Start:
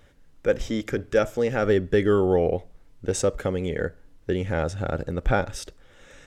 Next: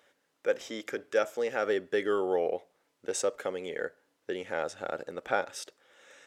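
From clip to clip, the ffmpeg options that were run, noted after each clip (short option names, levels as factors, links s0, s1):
-af "highpass=450,volume=0.631"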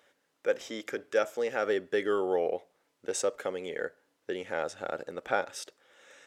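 -af anull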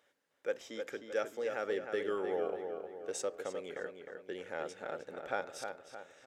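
-filter_complex "[0:a]asplit=2[s0][s1];[s1]adelay=309,lowpass=f=3200:p=1,volume=0.501,asplit=2[s2][s3];[s3]adelay=309,lowpass=f=3200:p=1,volume=0.48,asplit=2[s4][s5];[s5]adelay=309,lowpass=f=3200:p=1,volume=0.48,asplit=2[s6][s7];[s7]adelay=309,lowpass=f=3200:p=1,volume=0.48,asplit=2[s8][s9];[s9]adelay=309,lowpass=f=3200:p=1,volume=0.48,asplit=2[s10][s11];[s11]adelay=309,lowpass=f=3200:p=1,volume=0.48[s12];[s0][s2][s4][s6][s8][s10][s12]amix=inputs=7:normalize=0,volume=0.422"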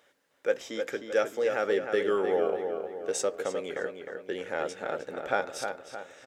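-filter_complex "[0:a]asplit=2[s0][s1];[s1]adelay=15,volume=0.224[s2];[s0][s2]amix=inputs=2:normalize=0,volume=2.51"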